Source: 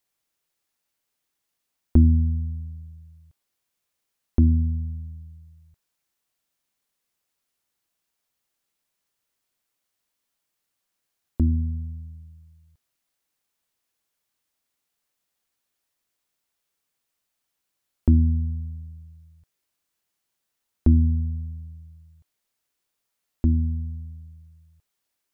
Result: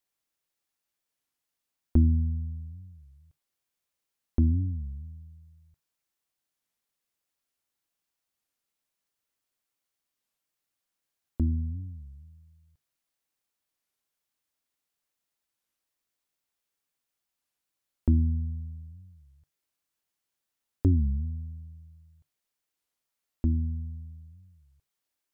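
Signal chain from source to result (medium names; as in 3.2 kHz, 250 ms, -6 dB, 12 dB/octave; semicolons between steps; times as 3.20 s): on a send at -18 dB: reverberation, pre-delay 3 ms; on the sum: warped record 33 1/3 rpm, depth 250 cents; trim -5.5 dB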